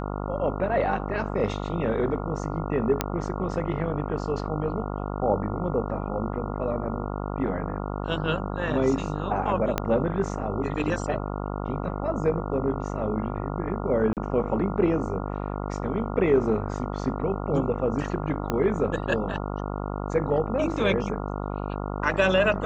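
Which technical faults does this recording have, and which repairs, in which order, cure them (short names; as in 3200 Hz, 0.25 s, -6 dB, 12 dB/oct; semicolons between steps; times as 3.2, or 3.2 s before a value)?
buzz 50 Hz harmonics 28 -31 dBFS
3.01 pop -7 dBFS
9.78 pop -9 dBFS
14.13–14.17 gap 38 ms
18.5 pop -12 dBFS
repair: de-click; de-hum 50 Hz, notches 28; interpolate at 14.13, 38 ms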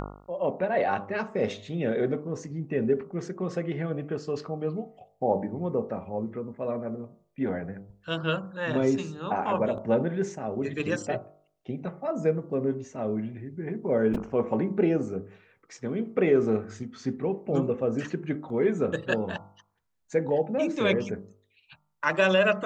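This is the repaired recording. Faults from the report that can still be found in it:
3.01 pop
9.78 pop
18.5 pop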